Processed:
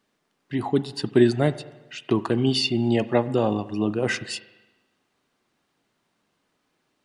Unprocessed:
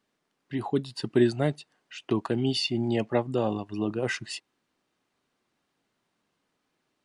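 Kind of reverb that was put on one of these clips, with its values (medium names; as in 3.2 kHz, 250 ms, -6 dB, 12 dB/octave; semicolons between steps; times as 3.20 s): spring tank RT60 1.1 s, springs 38/42 ms, chirp 55 ms, DRR 14.5 dB; trim +4.5 dB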